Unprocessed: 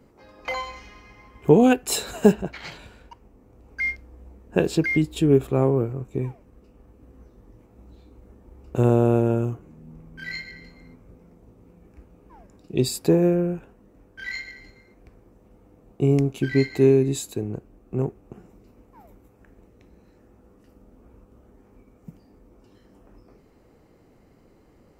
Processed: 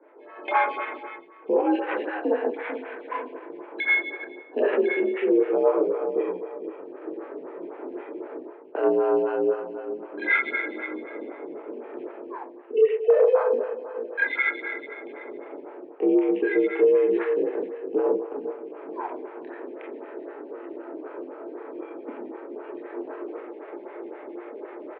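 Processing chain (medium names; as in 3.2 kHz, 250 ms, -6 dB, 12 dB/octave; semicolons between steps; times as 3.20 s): 12.72–13.53 s: formants replaced by sine waves; on a send: feedback delay 441 ms, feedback 21%, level -18 dB; on the sum: reverberation RT60 1.2 s, pre-delay 24 ms, DRR -3 dB; in parallel at -12 dB: saturation -8.5 dBFS, distortion -12 dB; on the sum: level rider gain up to 14 dB; peak limiter -9 dBFS, peak gain reduction 8.5 dB; careless resampling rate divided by 8×, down none, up hold; mistuned SSB +63 Hz 280–2500 Hz; lamp-driven phase shifter 3.9 Hz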